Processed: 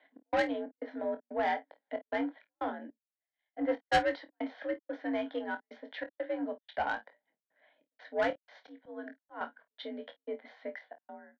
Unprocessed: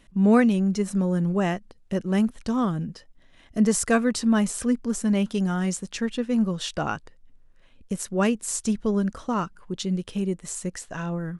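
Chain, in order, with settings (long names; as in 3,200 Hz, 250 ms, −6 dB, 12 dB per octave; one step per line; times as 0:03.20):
fade-out on the ending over 0.74 s
double-tracking delay 19 ms −12.5 dB
gate pattern "x.xx.xx.xxx" 92 BPM −60 dB
single-sideband voice off tune +67 Hz 240–3,000 Hz
0:08.30–0:09.41: volume swells 303 ms
phaser with its sweep stopped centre 1,800 Hz, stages 8
soft clipping −24 dBFS, distortion −11 dB
ambience of single reflections 25 ms −8.5 dB, 52 ms −17.5 dB
0:02.90–0:04.29: multiband upward and downward expander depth 100%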